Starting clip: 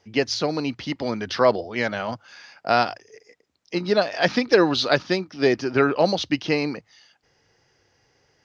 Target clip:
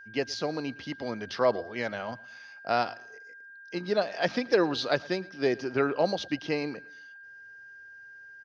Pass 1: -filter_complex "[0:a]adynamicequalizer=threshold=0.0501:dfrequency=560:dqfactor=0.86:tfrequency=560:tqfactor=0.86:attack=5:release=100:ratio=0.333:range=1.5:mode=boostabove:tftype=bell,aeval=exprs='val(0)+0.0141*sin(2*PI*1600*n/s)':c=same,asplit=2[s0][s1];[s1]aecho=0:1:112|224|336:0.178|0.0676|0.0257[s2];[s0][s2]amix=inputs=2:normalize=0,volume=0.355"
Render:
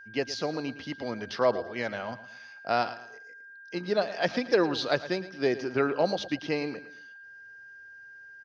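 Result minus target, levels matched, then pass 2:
echo-to-direct +7.5 dB
-filter_complex "[0:a]adynamicequalizer=threshold=0.0501:dfrequency=560:dqfactor=0.86:tfrequency=560:tqfactor=0.86:attack=5:release=100:ratio=0.333:range=1.5:mode=boostabove:tftype=bell,aeval=exprs='val(0)+0.0141*sin(2*PI*1600*n/s)':c=same,asplit=2[s0][s1];[s1]aecho=0:1:112|224|336:0.075|0.0285|0.0108[s2];[s0][s2]amix=inputs=2:normalize=0,volume=0.355"

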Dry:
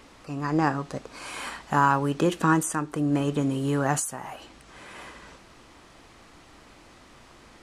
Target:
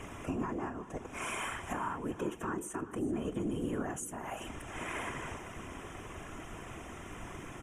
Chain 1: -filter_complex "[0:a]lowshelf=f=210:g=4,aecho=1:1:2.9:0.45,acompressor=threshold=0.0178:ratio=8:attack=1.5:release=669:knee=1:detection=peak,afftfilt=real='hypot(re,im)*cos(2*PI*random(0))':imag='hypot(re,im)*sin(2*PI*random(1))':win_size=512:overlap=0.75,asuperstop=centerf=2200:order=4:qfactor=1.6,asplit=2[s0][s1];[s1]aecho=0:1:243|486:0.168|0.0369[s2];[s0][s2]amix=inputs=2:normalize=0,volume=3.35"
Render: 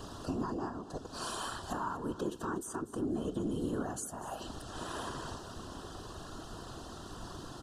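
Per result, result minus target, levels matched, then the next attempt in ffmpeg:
echo 143 ms early; 2 kHz band -5.5 dB
-filter_complex "[0:a]lowshelf=f=210:g=4,aecho=1:1:2.9:0.45,acompressor=threshold=0.0178:ratio=8:attack=1.5:release=669:knee=1:detection=peak,afftfilt=real='hypot(re,im)*cos(2*PI*random(0))':imag='hypot(re,im)*sin(2*PI*random(1))':win_size=512:overlap=0.75,asuperstop=centerf=2200:order=4:qfactor=1.6,asplit=2[s0][s1];[s1]aecho=0:1:386|772:0.168|0.0369[s2];[s0][s2]amix=inputs=2:normalize=0,volume=3.35"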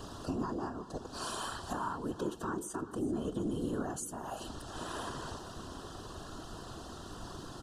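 2 kHz band -5.5 dB
-filter_complex "[0:a]lowshelf=f=210:g=4,aecho=1:1:2.9:0.45,acompressor=threshold=0.0178:ratio=8:attack=1.5:release=669:knee=1:detection=peak,afftfilt=real='hypot(re,im)*cos(2*PI*random(0))':imag='hypot(re,im)*sin(2*PI*random(1))':win_size=512:overlap=0.75,asuperstop=centerf=4400:order=4:qfactor=1.6,asplit=2[s0][s1];[s1]aecho=0:1:386|772:0.168|0.0369[s2];[s0][s2]amix=inputs=2:normalize=0,volume=3.35"

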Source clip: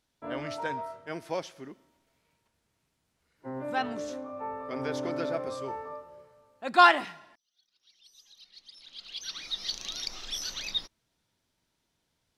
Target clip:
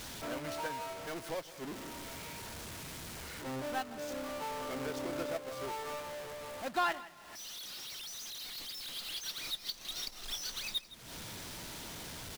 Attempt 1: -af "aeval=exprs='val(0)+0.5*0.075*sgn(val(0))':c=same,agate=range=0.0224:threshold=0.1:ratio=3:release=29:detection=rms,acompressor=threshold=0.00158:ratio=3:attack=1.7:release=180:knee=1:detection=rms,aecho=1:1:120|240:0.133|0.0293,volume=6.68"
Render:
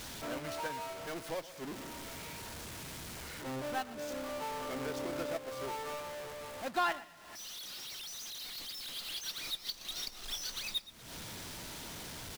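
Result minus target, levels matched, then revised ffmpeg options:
echo 43 ms early
-af "aeval=exprs='val(0)+0.5*0.075*sgn(val(0))':c=same,agate=range=0.0224:threshold=0.1:ratio=3:release=29:detection=rms,acompressor=threshold=0.00158:ratio=3:attack=1.7:release=180:knee=1:detection=rms,aecho=1:1:163|326:0.133|0.0293,volume=6.68"

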